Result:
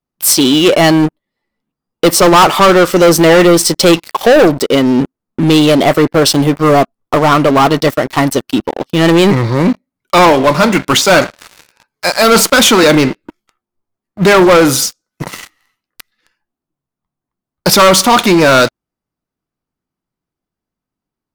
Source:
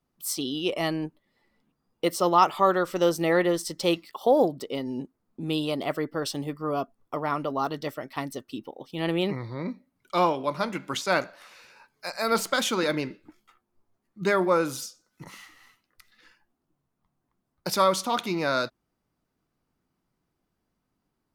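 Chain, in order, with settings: waveshaping leveller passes 5; trim +5 dB

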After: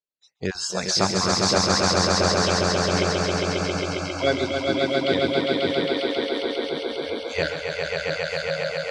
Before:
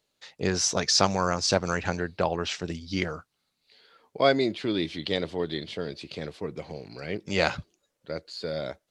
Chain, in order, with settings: random holes in the spectrogram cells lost 23%; echo with a slow build-up 135 ms, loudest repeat 5, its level -3 dB; spectral noise reduction 24 dB

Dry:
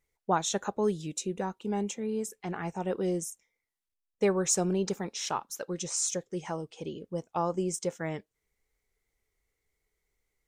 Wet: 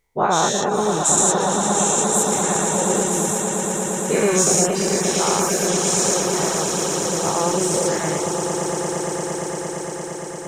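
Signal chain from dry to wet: every event in the spectrogram widened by 240 ms; 0.74–2.23 s: resonant high shelf 6.1 kHz +6.5 dB, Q 3; echo with a slow build-up 115 ms, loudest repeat 8, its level -10.5 dB; reverb removal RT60 0.5 s; trim +3.5 dB

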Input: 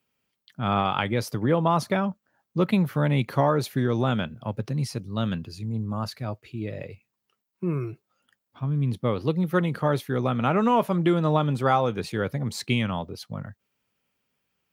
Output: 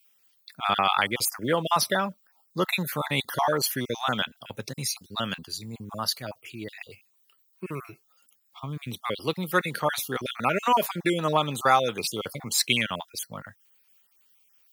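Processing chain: random holes in the spectrogram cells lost 31%; tilt EQ +4 dB/octave; trim +2.5 dB

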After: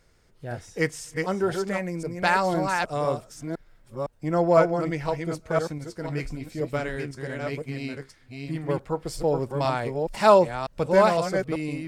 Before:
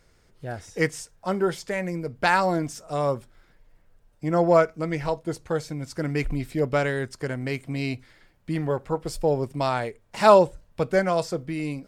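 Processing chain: chunks repeated in reverse 508 ms, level -4 dB; 5.78–8.69 s: flange 1.1 Hz, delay 5.7 ms, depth 9.5 ms, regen +61%; trim -1.5 dB

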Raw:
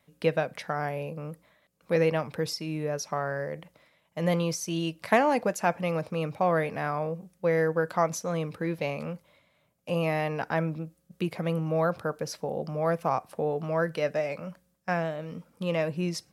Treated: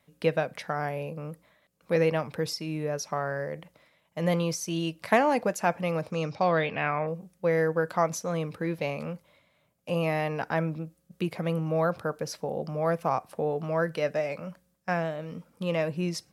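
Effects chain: 6.11–7.06 s: resonant low-pass 7.3 kHz -> 1.9 kHz

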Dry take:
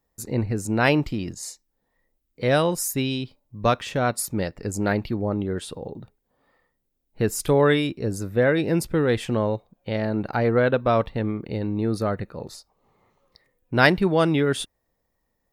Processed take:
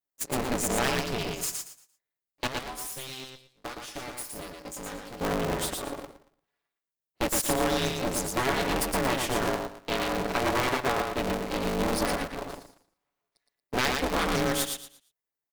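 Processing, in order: comb filter that takes the minimum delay 7 ms; gate -36 dBFS, range -21 dB; high-pass 340 Hz 6 dB/octave; treble shelf 4.3 kHz +8 dB; compression 6:1, threshold -27 dBFS, peak gain reduction 14.5 dB; 2.47–5.21 s: feedback comb 440 Hz, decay 0.2 s, harmonics all, mix 80%; feedback delay 115 ms, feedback 26%, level -4 dB; polarity switched at an audio rate 130 Hz; trim +2.5 dB

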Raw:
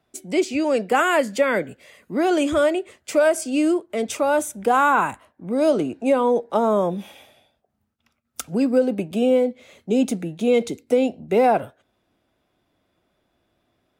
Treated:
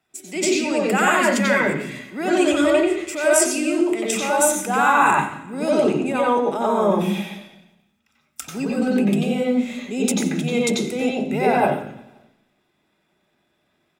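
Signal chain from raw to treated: transient shaper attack -3 dB, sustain +9 dB; feedback delay 177 ms, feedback 47%, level -24 dB; reverberation RT60 0.65 s, pre-delay 88 ms, DRR -2.5 dB

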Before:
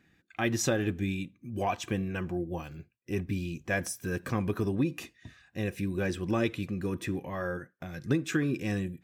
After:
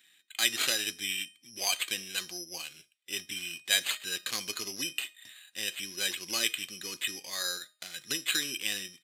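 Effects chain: careless resampling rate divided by 8×, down none, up hold; frequency weighting D; resampled via 32 kHz; tilt EQ +4 dB/octave; feedback comb 620 Hz, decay 0.38 s, mix 60%

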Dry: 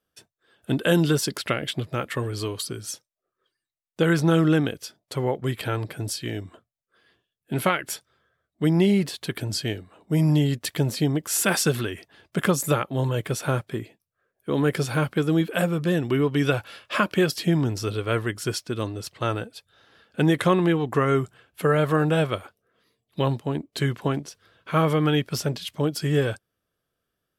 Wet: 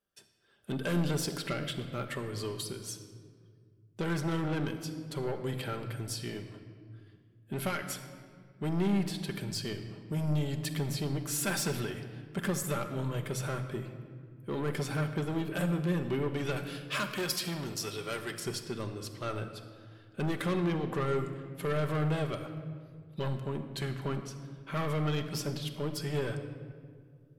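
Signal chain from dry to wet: saturation -20.5 dBFS, distortion -10 dB; 16.56–18.40 s: tilt EQ +2.5 dB/octave; simulated room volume 3300 m³, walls mixed, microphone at 1.2 m; trim -7.5 dB

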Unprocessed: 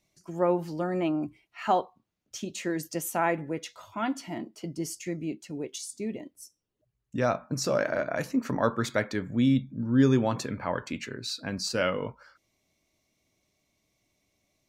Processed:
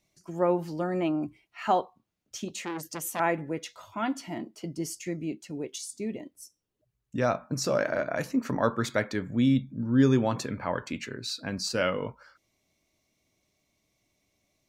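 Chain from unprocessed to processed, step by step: 2.48–3.20 s: transformer saturation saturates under 2.1 kHz

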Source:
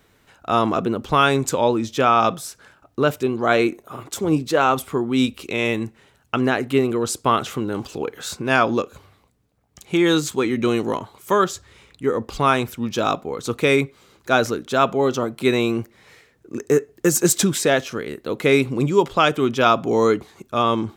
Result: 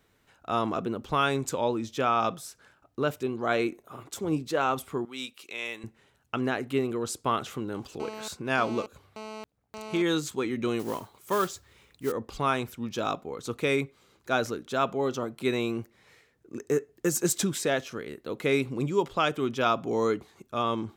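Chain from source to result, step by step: 5.05–5.84 s: high-pass 1.4 kHz 6 dB/octave; 8.00–10.02 s: mobile phone buzz -31 dBFS; 10.79–12.12 s: modulation noise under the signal 16 dB; trim -9 dB

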